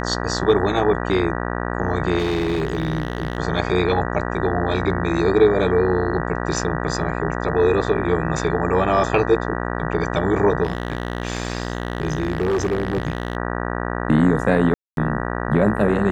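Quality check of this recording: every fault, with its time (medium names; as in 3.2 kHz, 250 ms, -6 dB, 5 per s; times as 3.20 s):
buzz 60 Hz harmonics 32 -25 dBFS
2.18–3.38 s: clipped -17 dBFS
10.63–13.37 s: clipped -16.5 dBFS
14.74–14.97 s: dropout 232 ms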